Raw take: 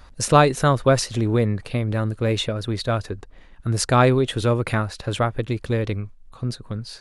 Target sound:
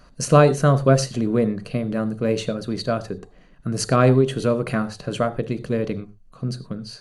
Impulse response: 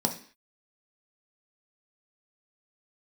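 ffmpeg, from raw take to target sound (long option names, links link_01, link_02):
-filter_complex "[0:a]asplit=2[link_01][link_02];[1:a]atrim=start_sample=2205,atrim=end_sample=4410,asetrate=34839,aresample=44100[link_03];[link_02][link_03]afir=irnorm=-1:irlink=0,volume=-11.5dB[link_04];[link_01][link_04]amix=inputs=2:normalize=0,volume=-5.5dB"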